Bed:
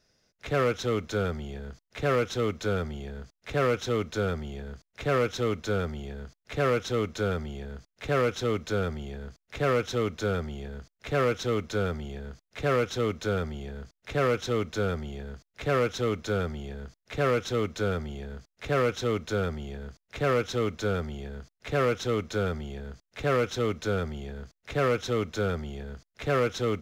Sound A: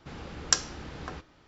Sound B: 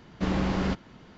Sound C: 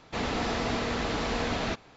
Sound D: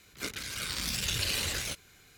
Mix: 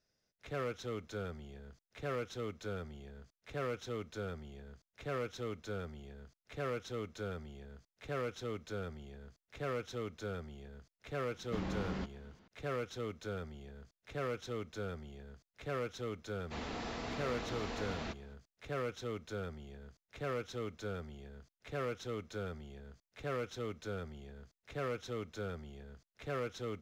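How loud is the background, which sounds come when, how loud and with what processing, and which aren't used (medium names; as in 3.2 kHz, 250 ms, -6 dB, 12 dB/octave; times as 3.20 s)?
bed -13 dB
11.31 s: add B -12.5 dB
16.38 s: add C -12 dB
not used: A, D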